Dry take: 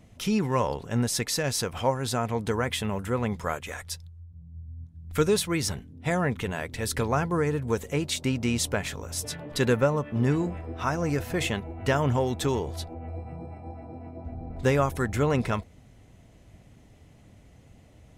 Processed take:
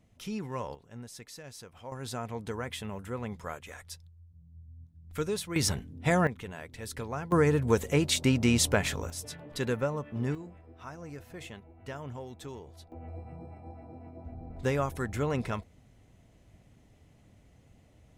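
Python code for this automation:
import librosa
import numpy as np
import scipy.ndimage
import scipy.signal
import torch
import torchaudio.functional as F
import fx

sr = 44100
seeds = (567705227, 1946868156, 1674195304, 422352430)

y = fx.gain(x, sr, db=fx.steps((0.0, -11.0), (0.75, -19.0), (1.92, -9.0), (5.56, 1.0), (6.27, -10.5), (7.32, 2.0), (9.1, -7.5), (10.35, -16.5), (12.92, -6.0)))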